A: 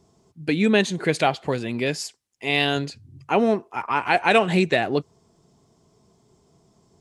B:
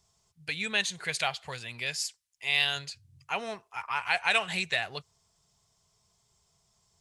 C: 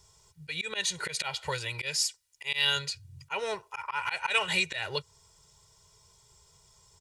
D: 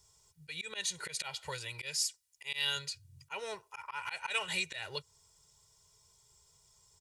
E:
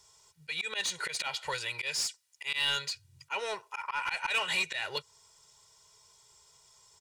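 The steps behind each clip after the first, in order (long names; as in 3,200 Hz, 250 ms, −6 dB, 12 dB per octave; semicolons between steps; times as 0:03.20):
guitar amp tone stack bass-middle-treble 10-0-10
comb filter 2.1 ms, depth 81%; volume swells 154 ms; in parallel at +1.5 dB: downward compressor, threshold −40 dBFS, peak gain reduction 16 dB
high-shelf EQ 5,800 Hz +8 dB; level −8.5 dB
mid-hump overdrive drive 15 dB, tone 3,900 Hz, clips at −19.5 dBFS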